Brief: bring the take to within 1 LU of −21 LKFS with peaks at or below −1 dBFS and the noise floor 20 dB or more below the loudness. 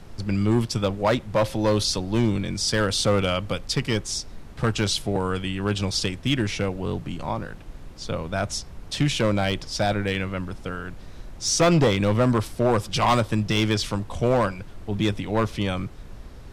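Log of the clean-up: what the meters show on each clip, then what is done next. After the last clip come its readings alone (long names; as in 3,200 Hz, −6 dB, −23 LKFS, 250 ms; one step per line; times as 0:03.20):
share of clipped samples 0.9%; peaks flattened at −13.5 dBFS; background noise floor −42 dBFS; target noise floor −45 dBFS; integrated loudness −24.5 LKFS; sample peak −13.5 dBFS; target loudness −21.0 LKFS
→ clipped peaks rebuilt −13.5 dBFS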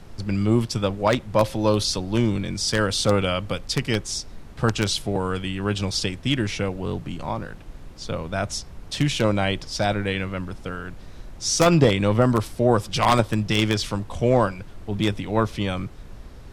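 share of clipped samples 0.0%; background noise floor −42 dBFS; target noise floor −44 dBFS
→ noise reduction from a noise print 6 dB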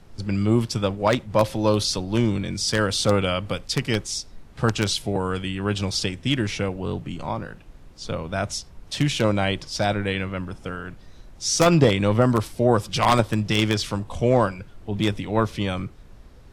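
background noise floor −47 dBFS; integrated loudness −23.5 LKFS; sample peak −4.5 dBFS; target loudness −21.0 LKFS
→ level +2.5 dB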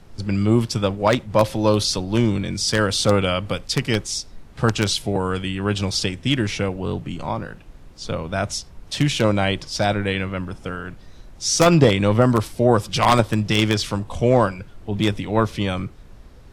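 integrated loudness −21.0 LKFS; sample peak −2.0 dBFS; background noise floor −44 dBFS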